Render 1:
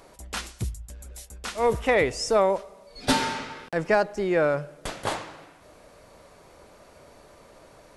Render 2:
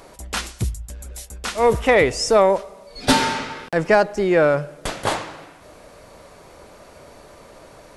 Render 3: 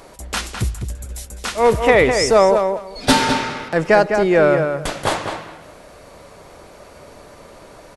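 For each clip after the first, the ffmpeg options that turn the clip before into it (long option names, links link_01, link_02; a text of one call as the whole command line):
ffmpeg -i in.wav -af "aeval=exprs='0.316*(cos(1*acos(clip(val(0)/0.316,-1,1)))-cos(1*PI/2))+0.00631*(cos(5*acos(clip(val(0)/0.316,-1,1)))-cos(5*PI/2))':channel_layout=same,volume=6dB" out.wav
ffmpeg -i in.wav -filter_complex "[0:a]asplit=2[link_01][link_02];[link_02]adelay=205,lowpass=frequency=3600:poles=1,volume=-6dB,asplit=2[link_03][link_04];[link_04]adelay=205,lowpass=frequency=3600:poles=1,volume=0.18,asplit=2[link_05][link_06];[link_06]adelay=205,lowpass=frequency=3600:poles=1,volume=0.18[link_07];[link_01][link_03][link_05][link_07]amix=inputs=4:normalize=0,volume=2dB" out.wav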